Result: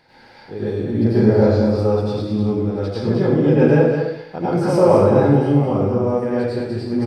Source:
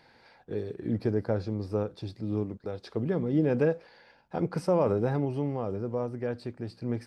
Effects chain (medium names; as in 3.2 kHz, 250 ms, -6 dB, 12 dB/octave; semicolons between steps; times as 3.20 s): 1.03–1.68 s: doubling 33 ms -3 dB; delay 208 ms -6.5 dB; plate-style reverb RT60 0.75 s, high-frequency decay 0.95×, pre-delay 80 ms, DRR -9 dB; trim +2.5 dB